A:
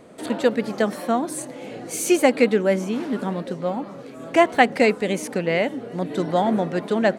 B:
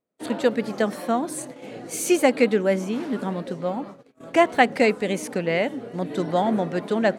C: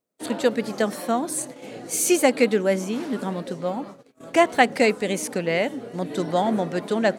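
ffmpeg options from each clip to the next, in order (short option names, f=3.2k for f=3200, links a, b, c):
-af "agate=range=-36dB:threshold=-35dB:ratio=16:detection=peak,volume=-1.5dB"
-af "bass=f=250:g=-1,treble=f=4k:g=6"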